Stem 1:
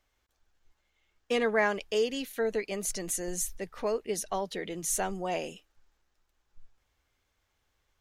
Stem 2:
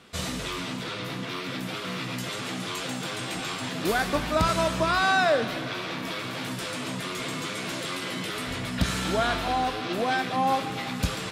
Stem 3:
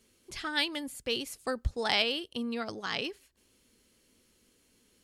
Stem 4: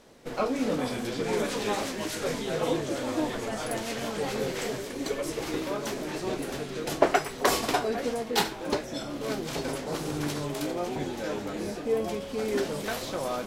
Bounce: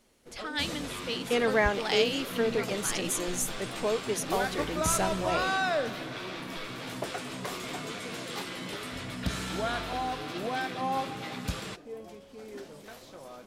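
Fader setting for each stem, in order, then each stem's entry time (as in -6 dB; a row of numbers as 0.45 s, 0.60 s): +1.0 dB, -6.5 dB, -2.5 dB, -15.0 dB; 0.00 s, 0.45 s, 0.00 s, 0.00 s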